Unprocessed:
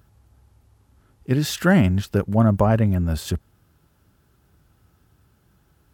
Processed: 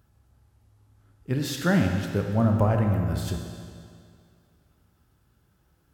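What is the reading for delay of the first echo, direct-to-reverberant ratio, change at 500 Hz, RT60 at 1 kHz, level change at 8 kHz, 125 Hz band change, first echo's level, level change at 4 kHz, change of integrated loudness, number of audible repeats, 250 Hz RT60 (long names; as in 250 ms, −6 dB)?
no echo audible, 3.0 dB, −5.0 dB, 2.2 s, −5.0 dB, −4.0 dB, no echo audible, −4.5 dB, −4.5 dB, no echo audible, 2.2 s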